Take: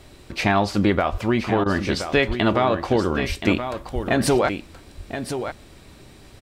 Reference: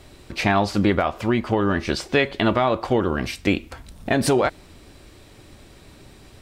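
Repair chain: de-plosive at 1.11/2.27/3.28/3.94; interpolate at 1.64, 18 ms; inverse comb 1.025 s -9 dB

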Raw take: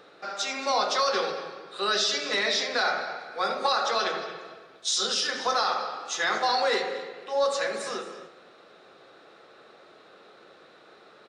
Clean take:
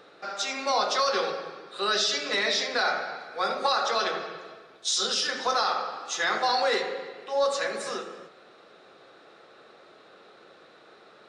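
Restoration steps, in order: inverse comb 0.226 s -16.5 dB

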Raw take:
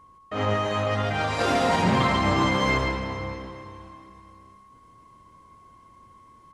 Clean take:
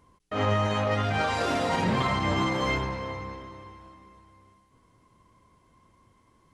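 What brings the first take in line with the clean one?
notch 1100 Hz, Q 30; inverse comb 0.142 s -6.5 dB; gain 0 dB, from 1.39 s -3.5 dB

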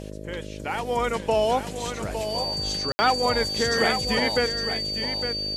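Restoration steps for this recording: de-hum 51.6 Hz, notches 12; notch 4600 Hz, Q 30; room tone fill 2.92–2.99; inverse comb 0.859 s -8.5 dB

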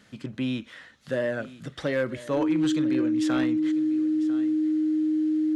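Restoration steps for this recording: clip repair -18 dBFS; notch 310 Hz, Q 30; inverse comb 0.998 s -17 dB

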